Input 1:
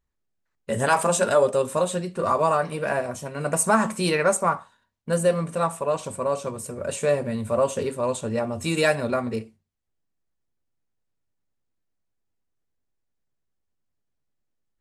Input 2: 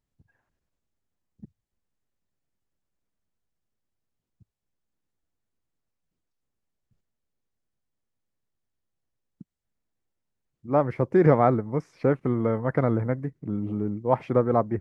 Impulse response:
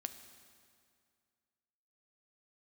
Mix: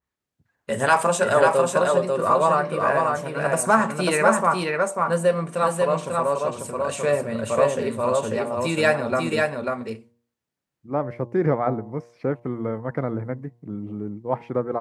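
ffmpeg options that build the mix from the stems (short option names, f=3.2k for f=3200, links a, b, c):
-filter_complex "[0:a]equalizer=f=1.7k:w=0.37:g=4.5,volume=-1dB,asplit=2[a][b];[b]volume=-3dB[c];[1:a]adelay=200,volume=-2.5dB[d];[c]aecho=0:1:542:1[e];[a][d][e]amix=inputs=3:normalize=0,highpass=87,bandreject=f=118.2:t=h:w=4,bandreject=f=236.4:t=h:w=4,bandreject=f=354.6:t=h:w=4,bandreject=f=472.8:t=h:w=4,bandreject=f=591:t=h:w=4,bandreject=f=709.2:t=h:w=4,bandreject=f=827.4:t=h:w=4,bandreject=f=945.6:t=h:w=4,bandreject=f=1.0638k:t=h:w=4,adynamicequalizer=threshold=0.0158:dfrequency=2400:dqfactor=0.7:tfrequency=2400:tqfactor=0.7:attack=5:release=100:ratio=0.375:range=2.5:mode=cutabove:tftype=highshelf"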